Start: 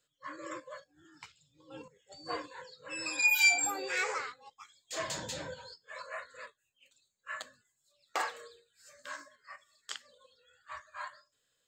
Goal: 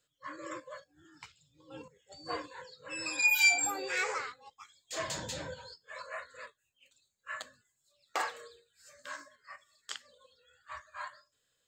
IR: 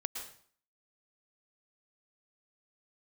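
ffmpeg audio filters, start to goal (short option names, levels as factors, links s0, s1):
-af "equalizer=f=68:t=o:w=1.5:g=5"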